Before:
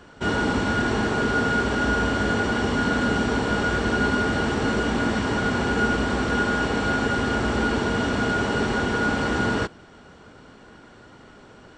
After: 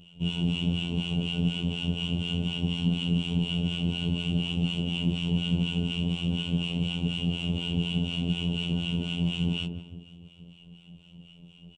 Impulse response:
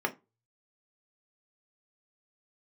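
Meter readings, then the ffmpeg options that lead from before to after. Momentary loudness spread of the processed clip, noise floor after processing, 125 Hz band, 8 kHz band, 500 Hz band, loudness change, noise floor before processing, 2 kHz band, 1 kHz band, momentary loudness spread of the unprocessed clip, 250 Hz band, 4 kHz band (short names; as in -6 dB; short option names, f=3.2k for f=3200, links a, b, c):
2 LU, -53 dBFS, +1.5 dB, under -10 dB, -16.0 dB, -5.5 dB, -48 dBFS, -15.5 dB, -24.0 dB, 1 LU, -4.0 dB, +2.0 dB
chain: -filter_complex "[0:a]firequalizer=gain_entry='entry(100,0);entry(170,15);entry(240,-7);entry(480,-10);entry(990,-16);entry(1700,-30);entry(2800,15);entry(4300,-14);entry(9200,-1)':delay=0.05:min_phase=1,asplit=2[a][b];[b]adelay=154,lowpass=f=1.1k:p=1,volume=-7dB,asplit=2[c][d];[d]adelay=154,lowpass=f=1.1k:p=1,volume=0.54,asplit=2[e][f];[f]adelay=154,lowpass=f=1.1k:p=1,volume=0.54,asplit=2[g][h];[h]adelay=154,lowpass=f=1.1k:p=1,volume=0.54,asplit=2[i][j];[j]adelay=154,lowpass=f=1.1k:p=1,volume=0.54,asplit=2[k][l];[l]adelay=154,lowpass=f=1.1k:p=1,volume=0.54,asplit=2[m][n];[n]adelay=154,lowpass=f=1.1k:p=1,volume=0.54[o];[c][e][g][i][k][m][o]amix=inputs=7:normalize=0[p];[a][p]amix=inputs=2:normalize=0,afftfilt=real='hypot(re,im)*cos(PI*b)':imag='0':win_size=2048:overlap=0.75,acrossover=split=810[q][r];[q]aeval=exprs='val(0)*(1-0.7/2+0.7/2*cos(2*PI*4.1*n/s))':c=same[s];[r]aeval=exprs='val(0)*(1-0.7/2-0.7/2*cos(2*PI*4.1*n/s))':c=same[t];[s][t]amix=inputs=2:normalize=0"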